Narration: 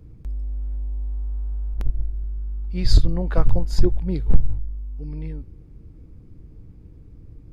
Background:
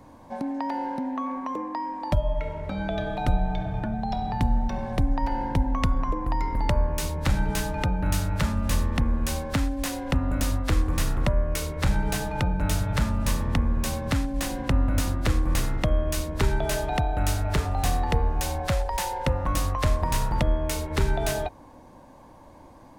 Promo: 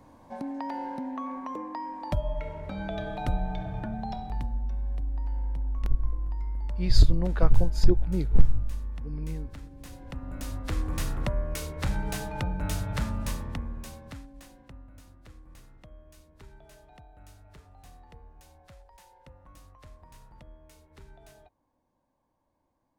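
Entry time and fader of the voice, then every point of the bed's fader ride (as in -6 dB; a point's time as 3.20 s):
4.05 s, -3.0 dB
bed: 4.07 s -5 dB
4.76 s -22 dB
9.63 s -22 dB
10.87 s -5.5 dB
13.17 s -5.5 dB
14.90 s -27.5 dB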